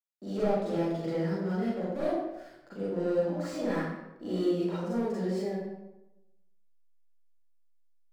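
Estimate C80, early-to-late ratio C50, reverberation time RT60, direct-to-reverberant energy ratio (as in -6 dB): 1.5 dB, -3.0 dB, 0.95 s, -10.0 dB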